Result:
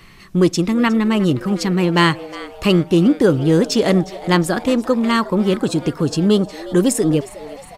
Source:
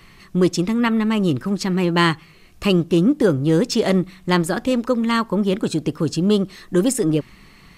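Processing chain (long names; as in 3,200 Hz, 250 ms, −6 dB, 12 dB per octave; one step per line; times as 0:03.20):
echo with shifted repeats 360 ms, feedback 58%, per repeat +140 Hz, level −18 dB
level +2.5 dB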